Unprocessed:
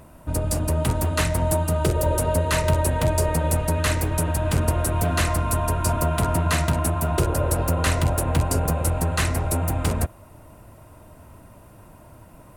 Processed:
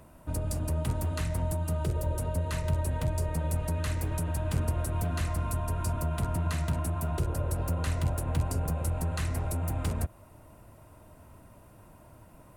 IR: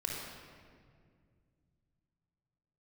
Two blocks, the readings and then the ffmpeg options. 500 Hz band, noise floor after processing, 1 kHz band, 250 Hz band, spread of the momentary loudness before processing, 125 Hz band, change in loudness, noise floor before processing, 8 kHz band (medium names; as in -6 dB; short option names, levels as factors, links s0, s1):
-12.0 dB, -54 dBFS, -12.0 dB, -9.0 dB, 2 LU, -7.0 dB, -8.5 dB, -48 dBFS, -13.0 dB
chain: -filter_complex "[0:a]acrossover=split=210[s0][s1];[s1]acompressor=threshold=0.0355:ratio=6[s2];[s0][s2]amix=inputs=2:normalize=0,volume=0.473"